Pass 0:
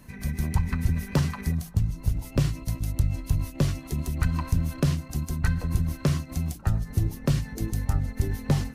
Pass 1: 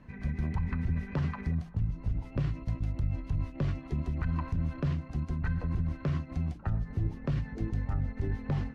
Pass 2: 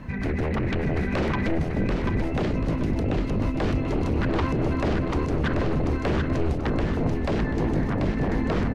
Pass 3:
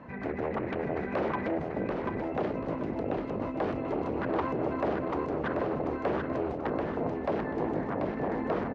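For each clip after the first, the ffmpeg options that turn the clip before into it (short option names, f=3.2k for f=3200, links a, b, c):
-af "lowpass=2.3k,alimiter=limit=-19dB:level=0:latency=1:release=34,volume=-3dB"
-af "aeval=exprs='0.0841*sin(PI/2*3.55*val(0)/0.0841)':c=same,aecho=1:1:737|1474|2211|2948:0.631|0.208|0.0687|0.0227"
-af "bandpass=f=700:t=q:w=0.88:csg=0"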